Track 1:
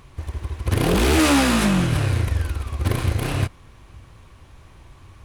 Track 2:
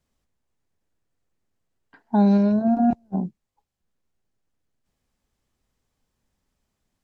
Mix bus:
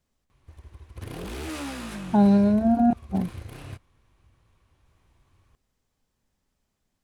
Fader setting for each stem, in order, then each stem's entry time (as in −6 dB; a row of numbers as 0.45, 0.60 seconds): −17.5, −0.5 decibels; 0.30, 0.00 seconds